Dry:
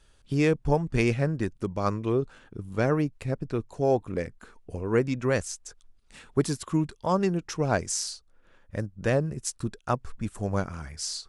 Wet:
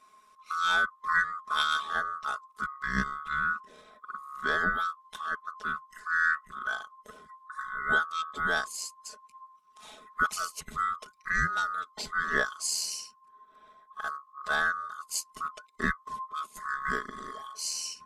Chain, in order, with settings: split-band scrambler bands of 1 kHz; dynamic bell 1.2 kHz, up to -5 dB, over -37 dBFS, Q 2.2; granular stretch 1.6×, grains 25 ms

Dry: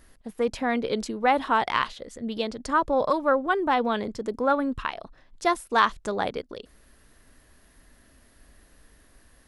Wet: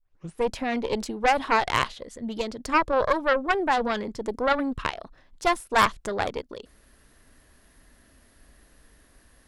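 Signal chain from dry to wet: tape start-up on the opening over 0.36 s; Chebyshev shaper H 6 -15 dB, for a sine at -6 dBFS

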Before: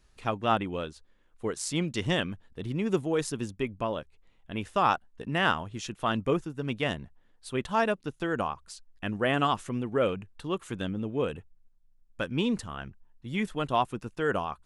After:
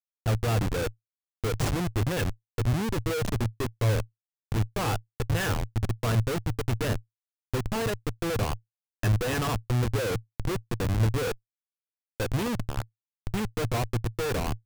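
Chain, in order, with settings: small resonant body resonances 480/1700/2600 Hz, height 11 dB, ringing for 55 ms; Schmitt trigger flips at -29.5 dBFS; peaking EQ 110 Hz +14 dB 0.43 oct

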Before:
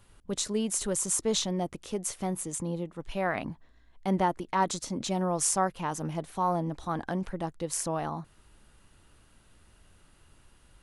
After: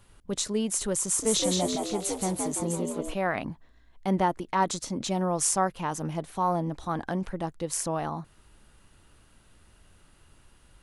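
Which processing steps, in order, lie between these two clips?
1.01–3.14 s: frequency-shifting echo 169 ms, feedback 56%, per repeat +71 Hz, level -3 dB; trim +1.5 dB

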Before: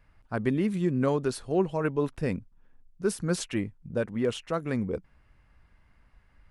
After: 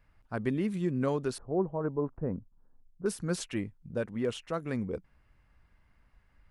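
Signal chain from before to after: 1.38–3.06 s: low-pass 1.2 kHz 24 dB/octave; trim -4 dB

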